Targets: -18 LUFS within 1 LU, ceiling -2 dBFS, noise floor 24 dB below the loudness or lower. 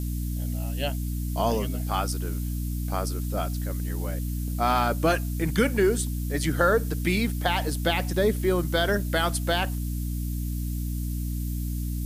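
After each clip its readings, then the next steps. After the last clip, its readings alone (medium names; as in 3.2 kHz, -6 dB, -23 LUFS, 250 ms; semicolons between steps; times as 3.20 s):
hum 60 Hz; highest harmonic 300 Hz; hum level -27 dBFS; noise floor -30 dBFS; noise floor target -51 dBFS; loudness -27.0 LUFS; peak level -9.5 dBFS; loudness target -18.0 LUFS
-> de-hum 60 Hz, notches 5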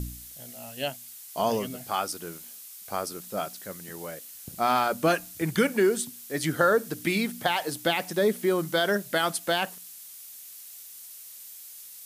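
hum not found; noise floor -45 dBFS; noise floor target -52 dBFS
-> noise print and reduce 7 dB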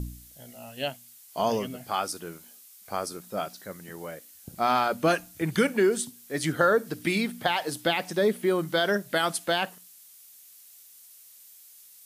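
noise floor -52 dBFS; loudness -27.0 LUFS; peak level -9.5 dBFS; loudness target -18.0 LUFS
-> trim +9 dB; peak limiter -2 dBFS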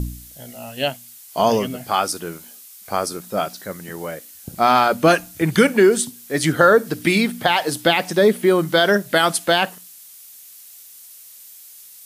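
loudness -18.0 LUFS; peak level -2.0 dBFS; noise floor -43 dBFS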